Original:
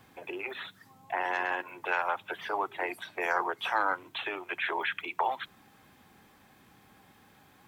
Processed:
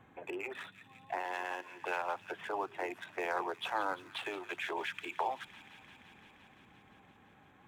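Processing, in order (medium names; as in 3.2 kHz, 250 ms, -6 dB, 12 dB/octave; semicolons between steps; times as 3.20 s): local Wiener filter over 9 samples; 1.19–1.82 s: bass shelf 440 Hz -7.5 dB; feedback echo behind a high-pass 172 ms, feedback 82%, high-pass 2.8 kHz, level -13 dB; dynamic bell 1.5 kHz, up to -7 dB, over -41 dBFS, Q 0.77; trim -1.5 dB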